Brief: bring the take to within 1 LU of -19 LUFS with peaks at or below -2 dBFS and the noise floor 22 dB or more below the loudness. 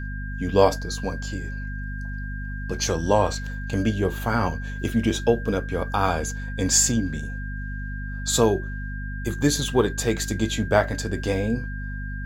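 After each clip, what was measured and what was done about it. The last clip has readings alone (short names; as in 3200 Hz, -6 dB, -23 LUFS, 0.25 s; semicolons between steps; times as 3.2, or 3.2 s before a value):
hum 50 Hz; harmonics up to 250 Hz; hum level -29 dBFS; steady tone 1600 Hz; tone level -37 dBFS; loudness -25.0 LUFS; peak -2.5 dBFS; loudness target -19.0 LUFS
-> notches 50/100/150/200/250 Hz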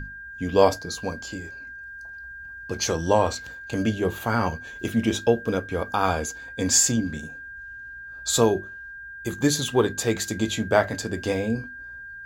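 hum none; steady tone 1600 Hz; tone level -37 dBFS
-> notch 1600 Hz, Q 30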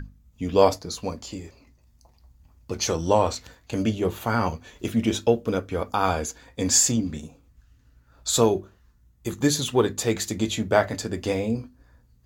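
steady tone none; loudness -24.5 LUFS; peak -3.0 dBFS; loudness target -19.0 LUFS
-> gain +5.5 dB; limiter -2 dBFS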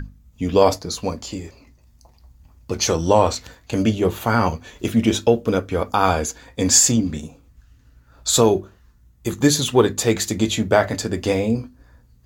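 loudness -19.5 LUFS; peak -2.0 dBFS; noise floor -54 dBFS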